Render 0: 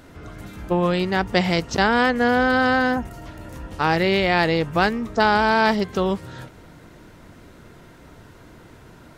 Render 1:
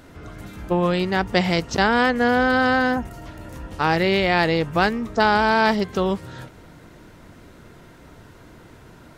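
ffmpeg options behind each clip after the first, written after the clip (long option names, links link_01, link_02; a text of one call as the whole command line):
ffmpeg -i in.wav -af anull out.wav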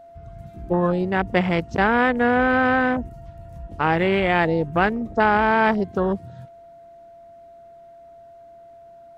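ffmpeg -i in.wav -af "afwtdn=0.0562,aeval=exprs='val(0)+0.00708*sin(2*PI*680*n/s)':channel_layout=same" out.wav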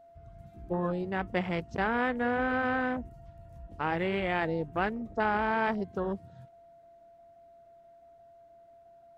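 ffmpeg -i in.wav -af "flanger=delay=0.9:depth=3.5:regen=-83:speed=1.2:shape=triangular,volume=-6dB" out.wav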